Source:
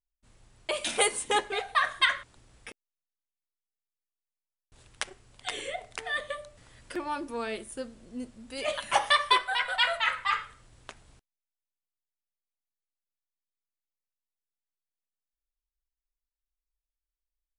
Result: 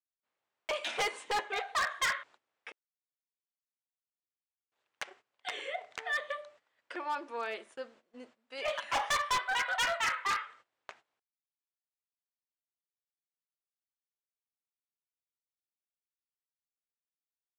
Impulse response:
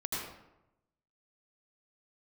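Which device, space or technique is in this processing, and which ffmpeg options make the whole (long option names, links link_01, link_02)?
walkie-talkie: -af "highpass=570,lowpass=2700,asoftclip=type=hard:threshold=-27dB,agate=range=-18dB:threshold=-57dB:ratio=16:detection=peak,equalizer=frequency=7000:width=1.2:gain=5.5"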